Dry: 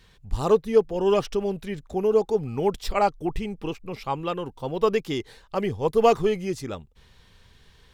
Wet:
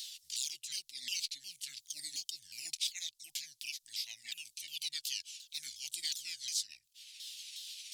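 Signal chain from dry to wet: sawtooth pitch modulation -8 st, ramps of 360 ms; inverse Chebyshev high-pass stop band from 1.2 kHz, stop band 60 dB; three bands compressed up and down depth 70%; trim +13 dB

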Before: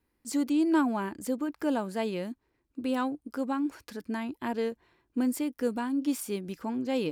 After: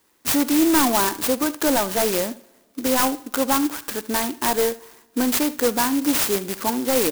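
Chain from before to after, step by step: high-pass 1.2 kHz 6 dB/octave; sine folder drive 9 dB, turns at -21 dBFS; on a send: delay 74 ms -18 dB; on the sum: two-slope reverb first 0.87 s, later 3.4 s, from -21 dB, DRR 19 dB; sampling jitter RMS 0.11 ms; trim +8 dB

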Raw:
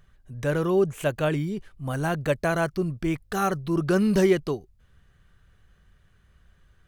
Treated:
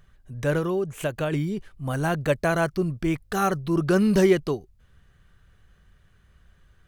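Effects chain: 0.58–1.33 s: compression 6:1, threshold -24 dBFS, peak gain reduction 7.5 dB; trim +1.5 dB

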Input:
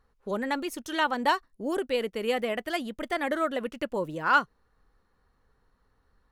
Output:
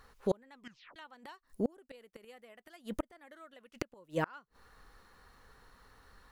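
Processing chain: 1.47–3.28 s: peaking EQ 3.1 kHz -5 dB 1.3 oct; inverted gate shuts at -24 dBFS, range -35 dB; 0.53 s: tape stop 0.43 s; tape noise reduction on one side only encoder only; trim +5.5 dB

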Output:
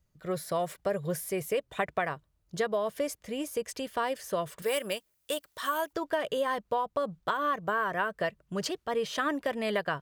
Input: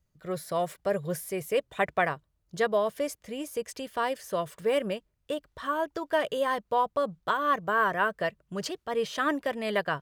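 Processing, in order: 4.62–5.93 s: RIAA curve recording; compression, threshold -27 dBFS, peak gain reduction 7.5 dB; trim +1.5 dB

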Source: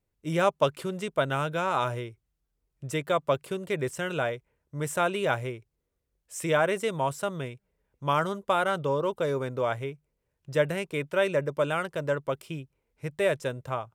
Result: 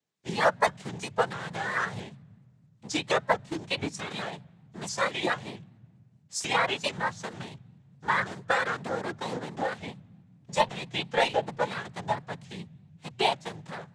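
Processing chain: spectral contrast reduction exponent 0.7; in parallel at +2.5 dB: compression 10:1, threshold -32 dBFS, peak gain reduction 15 dB; on the sum: noise-vocoded speech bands 6; hard clipper -11 dBFS, distortion -27 dB; on a send at -22.5 dB: resonant low shelf 250 Hz +14 dB, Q 1.5 + reverberation RT60 2.1 s, pre-delay 4 ms; on the sum: spectral noise reduction 11 dB; vibrato with a chosen wave saw up 4.5 Hz, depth 160 cents

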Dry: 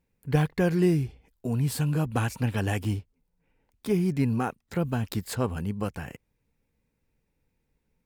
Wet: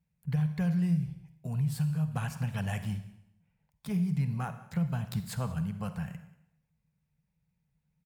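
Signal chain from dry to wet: high-pass 41 Hz; harmonic-percussive split harmonic -4 dB; FFT filter 110 Hz 0 dB, 160 Hz +12 dB, 310 Hz -20 dB, 650 Hz -4 dB; compression 10:1, threshold -24 dBFS, peak gain reduction 10 dB; delay 187 ms -22.5 dB; on a send at -10 dB: reverberation RT60 0.80 s, pre-delay 38 ms; on the sum: trim -2 dB

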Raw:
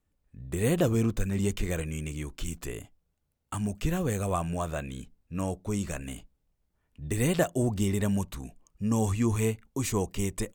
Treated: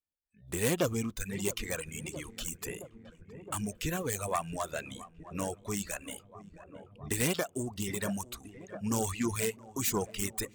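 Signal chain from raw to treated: self-modulated delay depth 0.15 ms; spectral noise reduction 20 dB; filtered feedback delay 668 ms, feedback 78%, low-pass 2.1 kHz, level -13 dB; reverb removal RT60 1.9 s; 7.34–7.88 s: compression, threshold -27 dBFS, peak gain reduction 7 dB; tilt EQ +2 dB/octave

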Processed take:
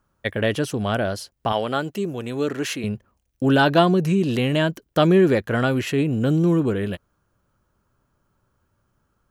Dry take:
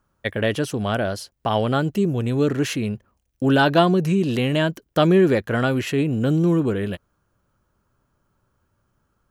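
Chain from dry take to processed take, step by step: 1.52–2.84 s: high-pass 420 Hz 6 dB/octave

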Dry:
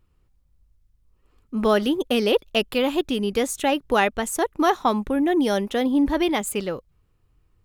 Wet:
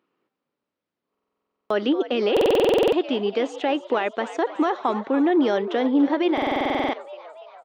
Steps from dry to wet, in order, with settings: high-pass 250 Hz 24 dB/octave; peak limiter -14.5 dBFS, peak gain reduction 10 dB; Gaussian low-pass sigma 2.1 samples; on a send: frequency-shifting echo 287 ms, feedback 62%, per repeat +77 Hz, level -14 dB; on the sum: buffer glitch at 1.10/2.32/6.33 s, samples 2048, times 12; trim +2.5 dB

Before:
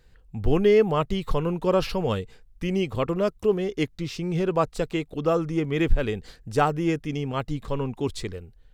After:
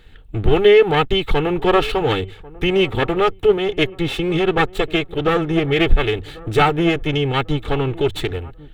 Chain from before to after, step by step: comb filter that takes the minimum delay 2.3 ms; resonant high shelf 4.2 kHz -6.5 dB, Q 3; band-stop 1 kHz, Q 7.9; in parallel at +1 dB: compression, threshold -33 dBFS, peak gain reduction 19 dB; on the sum: peaking EQ 530 Hz -6.5 dB 0.29 oct; hum notches 50/100 Hz; on a send: feedback echo behind a low-pass 1093 ms, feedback 31%, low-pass 1.3 kHz, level -20.5 dB; on the sum: trim +6.5 dB

